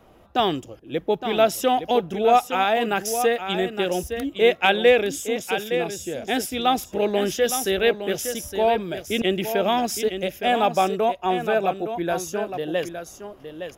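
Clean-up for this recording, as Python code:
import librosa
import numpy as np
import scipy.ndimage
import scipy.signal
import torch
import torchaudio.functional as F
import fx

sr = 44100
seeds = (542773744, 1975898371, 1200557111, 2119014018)

y = fx.fix_echo_inverse(x, sr, delay_ms=864, level_db=-9.0)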